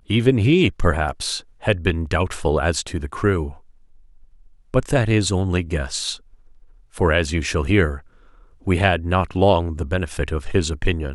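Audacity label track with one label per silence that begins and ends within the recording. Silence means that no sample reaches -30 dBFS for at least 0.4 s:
3.530000	4.740000	silence
6.150000	6.960000	silence
7.980000	8.670000	silence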